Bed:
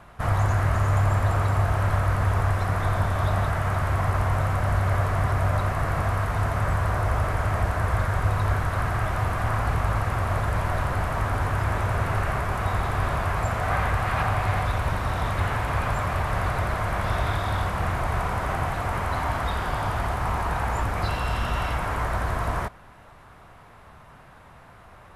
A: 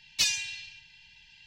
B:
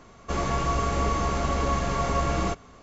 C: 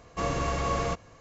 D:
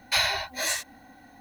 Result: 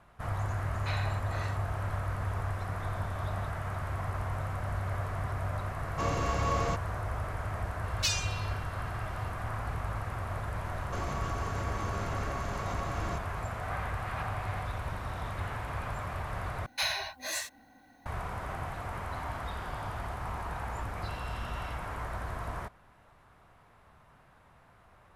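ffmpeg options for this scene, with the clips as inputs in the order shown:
-filter_complex "[4:a]asplit=2[a][b];[0:a]volume=-11dB[c];[a]lowpass=2.6k[d];[3:a]equalizer=f=970:t=o:w=0.77:g=2.5[e];[2:a]acompressor=threshold=-30dB:ratio=6:attack=3.2:release=140:knee=1:detection=peak[f];[c]asplit=2[g][h];[g]atrim=end=16.664[i];[b]atrim=end=1.4,asetpts=PTS-STARTPTS,volume=-7.5dB[j];[h]atrim=start=18.056[k];[d]atrim=end=1.4,asetpts=PTS-STARTPTS,volume=-12dB,afade=t=in:d=0.004:c=hsin,afade=t=out:st=1.396:d=0.004:c=hsin,adelay=740[l];[e]atrim=end=1.2,asetpts=PTS-STARTPTS,volume=-3.5dB,afade=t=in:d=0.004:c=hsin,afade=t=out:st=1.196:d=0.004:c=hsin,adelay=256221S[m];[1:a]atrim=end=1.46,asetpts=PTS-STARTPTS,volume=-4.5dB,afade=t=in:d=0.004:c=hsin,afade=t=out:st=1.456:d=0.004:c=hsin,adelay=7840[n];[f]atrim=end=2.82,asetpts=PTS-STARTPTS,volume=-3.5dB,afade=t=in:d=0.004:c=hsin,afade=t=out:st=2.816:d=0.004:c=hsin,adelay=10640[o];[i][j]acrossfade=d=0.004:c1=hsin:c2=hsin[p];[p][k]acrossfade=d=0.004:c1=hsin:c2=hsin[q];[q][l][m][n][o]amix=inputs=5:normalize=0"

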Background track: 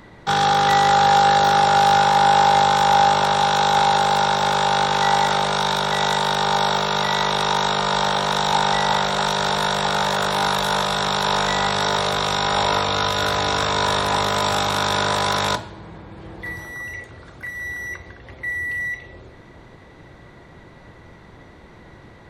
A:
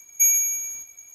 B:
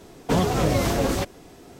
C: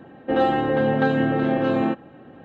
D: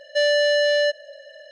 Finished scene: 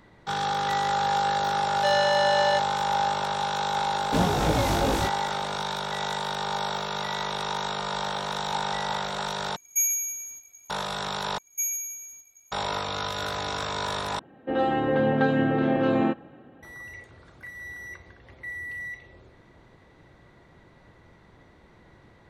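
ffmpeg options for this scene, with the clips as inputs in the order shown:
-filter_complex "[1:a]asplit=2[a][b];[0:a]volume=-10dB[c];[2:a]flanger=delay=17.5:depth=3:speed=2.6[d];[3:a]dynaudnorm=f=190:g=5:m=8dB[e];[c]asplit=4[f][g][h][i];[f]atrim=end=9.564[j];[a]atrim=end=1.14,asetpts=PTS-STARTPTS,volume=-6dB[k];[g]atrim=start=10.696:end=11.384[l];[b]atrim=end=1.14,asetpts=PTS-STARTPTS,volume=-10.5dB[m];[h]atrim=start=12.516:end=14.194[n];[e]atrim=end=2.44,asetpts=PTS-STARTPTS,volume=-7.5dB[o];[i]atrim=start=16.626[p];[4:a]atrim=end=1.51,asetpts=PTS-STARTPTS,volume=-5.5dB,afade=t=in:d=0.004:c=hsin,afade=t=out:st=1.506:d=0.004:c=hsin,adelay=1680[q];[d]atrim=end=1.79,asetpts=PTS-STARTPTS,volume=-0.5dB,afade=t=in:d=0.004:c=hsin,afade=t=out:st=1.786:d=0.004:c=hsin,adelay=3830[r];[j][k]acrossfade=d=0.004:c1=hsin:c2=hsin[s];[s][l]acrossfade=d=0.004:c1=hsin:c2=hsin[t];[t][m]acrossfade=d=0.004:c1=hsin:c2=hsin[u];[u][n]acrossfade=d=0.004:c1=hsin:c2=hsin[v];[v][o]acrossfade=d=0.004:c1=hsin:c2=hsin[w];[w][p]acrossfade=d=0.004:c1=hsin:c2=hsin[x];[x][q][r]amix=inputs=3:normalize=0"

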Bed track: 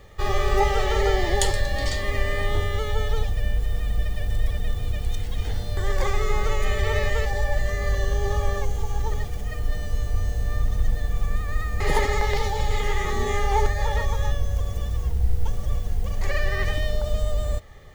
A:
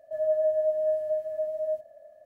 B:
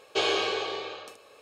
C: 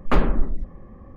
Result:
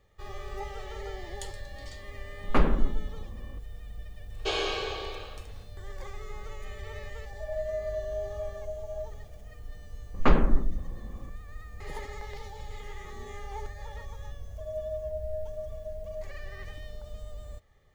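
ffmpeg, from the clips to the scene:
-filter_complex "[3:a]asplit=2[a][b];[1:a]asplit=2[c][d];[0:a]volume=-17.5dB[e];[b]aresample=16000,aresample=44100[f];[a]atrim=end=1.16,asetpts=PTS-STARTPTS,volume=-4dB,afade=t=in:d=0.004:c=hsin,afade=t=out:st=1.156:d=0.004:c=hsin,adelay=2430[g];[2:a]atrim=end=1.41,asetpts=PTS-STARTPTS,volume=-4dB,afade=t=in:d=0.1,afade=t=out:st=1.31:d=0.1,adelay=4300[h];[c]atrim=end=2.25,asetpts=PTS-STARTPTS,volume=-8.5dB,afade=t=in:d=0.004:c=hsin,afade=t=out:st=2.246:d=0.004:c=hsin,adelay=7290[i];[f]atrim=end=1.16,asetpts=PTS-STARTPTS,volume=-2dB,afade=t=in:d=0.004:c=hsin,afade=t=out:st=1.156:d=0.004:c=hsin,adelay=10140[j];[d]atrim=end=2.25,asetpts=PTS-STARTPTS,volume=-10.5dB,afade=t=in:d=0.004:c=hsin,afade=t=out:st=2.246:d=0.004:c=hsin,adelay=14470[k];[e][g][h][i][j][k]amix=inputs=6:normalize=0"

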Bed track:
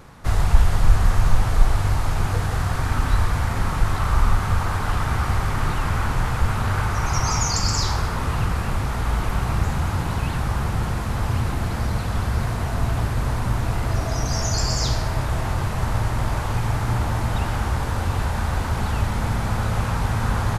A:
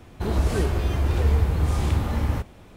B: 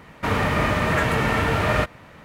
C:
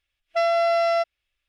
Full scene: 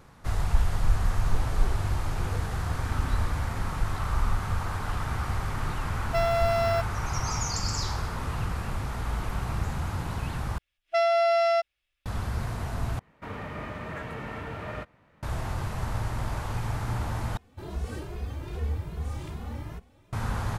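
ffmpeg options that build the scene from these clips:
-filter_complex "[1:a]asplit=2[a][b];[3:a]asplit=2[c][d];[0:a]volume=-8dB[e];[a]lowpass=7.1k[f];[c]acrusher=bits=7:mode=log:mix=0:aa=0.000001[g];[2:a]highshelf=f=2.9k:g=-7.5[h];[b]asplit=2[i][j];[j]adelay=2.4,afreqshift=2.5[k];[i][k]amix=inputs=2:normalize=1[l];[e]asplit=4[m][n][o][p];[m]atrim=end=10.584[q];[d]atrim=end=1.48,asetpts=PTS-STARTPTS,volume=-2dB[r];[n]atrim=start=12.056:end=12.994[s];[h]atrim=end=2.24,asetpts=PTS-STARTPTS,volume=-15dB[t];[o]atrim=start=15.226:end=17.374[u];[l]atrim=end=2.76,asetpts=PTS-STARTPTS,volume=-9dB[v];[p]atrim=start=20.126[w];[f]atrim=end=2.76,asetpts=PTS-STARTPTS,volume=-14.5dB,afade=t=in:d=0.004:c=hsin,afade=t=out:st=2.756:d=0.004:c=hsin,adelay=1070[x];[g]atrim=end=1.48,asetpts=PTS-STARTPTS,volume=-5dB,afade=t=in:d=0.004:c=hsin,afade=t=out:st=1.476:d=0.004:c=hsin,adelay=5780[y];[q][r]acrossfade=d=0.004:c1=hsin:c2=hsin[z];[z][s]acrossfade=d=0.004:c1=hsin:c2=hsin[aa];[aa][t]acrossfade=d=0.004:c1=hsin:c2=hsin[ab];[ab][u]acrossfade=d=0.004:c1=hsin:c2=hsin[ac];[ac][v]acrossfade=d=0.004:c1=hsin:c2=hsin[ad];[ad][w]acrossfade=d=0.004:c1=hsin:c2=hsin[ae];[ae][x][y]amix=inputs=3:normalize=0"

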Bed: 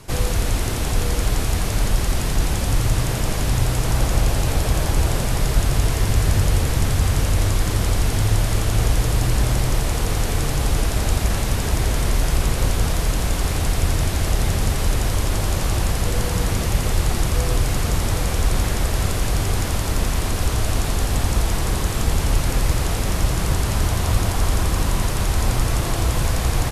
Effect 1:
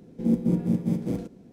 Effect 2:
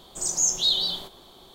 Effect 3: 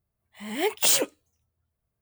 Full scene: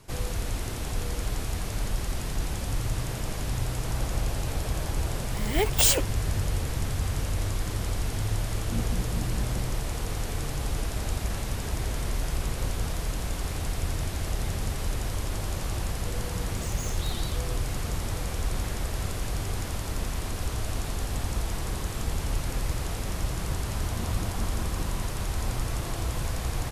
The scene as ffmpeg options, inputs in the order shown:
-filter_complex "[1:a]asplit=2[a][b];[0:a]volume=-10dB[c];[2:a]asoftclip=type=tanh:threshold=-25dB[d];[3:a]atrim=end=2.01,asetpts=PTS-STARTPTS,volume=-0.5dB,afade=t=in:d=0.004:c=hsin,afade=t=out:st=2.006:d=0.004:c=hsin,adelay=4960[e];[a]atrim=end=1.52,asetpts=PTS-STARTPTS,volume=-13.5dB,afade=t=in:d=0.004:c=hsin,afade=t=out:st=1.516:d=0.004:c=hsin,adelay=8460[f];[d]atrim=end=1.54,asetpts=PTS-STARTPTS,volume=-13dB,afade=t=in:d=0.004:c=hsin,afade=t=out:st=1.536:d=0.004:c=hsin,adelay=16400[g];[b]atrim=end=1.52,asetpts=PTS-STARTPTS,volume=-16.5dB,afade=t=in:d=0.004:c=hsin,afade=t=out:st=1.516:d=0.004:c=hsin,adelay=23700[h];[c][e][f][g][h]amix=inputs=5:normalize=0"

